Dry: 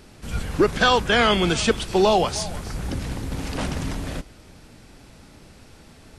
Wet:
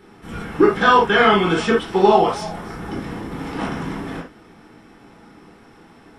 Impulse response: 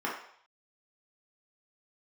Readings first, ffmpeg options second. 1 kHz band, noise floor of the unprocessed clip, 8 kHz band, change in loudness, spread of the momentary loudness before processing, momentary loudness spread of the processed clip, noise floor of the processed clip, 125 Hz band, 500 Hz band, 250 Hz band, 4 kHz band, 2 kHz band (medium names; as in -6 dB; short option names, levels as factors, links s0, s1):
+6.0 dB, -49 dBFS, -9.0 dB, +4.5 dB, 14 LU, 18 LU, -48 dBFS, -1.5 dB, +4.0 dB, +4.0 dB, -2.5 dB, +3.5 dB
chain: -filter_complex "[1:a]atrim=start_sample=2205,atrim=end_sample=3969[s0];[0:a][s0]afir=irnorm=-1:irlink=0,volume=0.631"